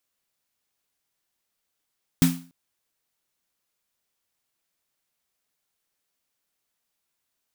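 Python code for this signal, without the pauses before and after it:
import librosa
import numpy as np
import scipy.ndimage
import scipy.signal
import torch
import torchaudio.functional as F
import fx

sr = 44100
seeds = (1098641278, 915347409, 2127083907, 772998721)

y = fx.drum_snare(sr, seeds[0], length_s=0.29, hz=170.0, second_hz=260.0, noise_db=-8.5, noise_from_hz=660.0, decay_s=0.38, noise_decay_s=0.36)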